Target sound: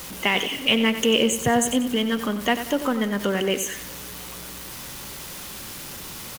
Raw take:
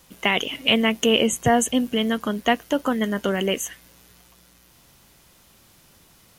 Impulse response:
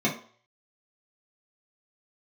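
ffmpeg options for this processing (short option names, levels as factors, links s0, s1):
-af "aeval=exprs='val(0)+0.5*0.0316*sgn(val(0))':c=same,lowshelf=f=150:g=-3.5,bandreject=f=680:w=12,aecho=1:1:93|186|279|372:0.282|0.11|0.0429|0.0167,volume=0.841"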